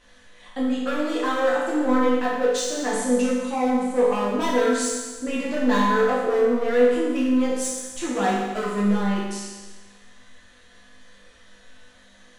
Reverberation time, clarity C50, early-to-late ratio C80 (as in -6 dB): 1.3 s, 0.0 dB, 2.5 dB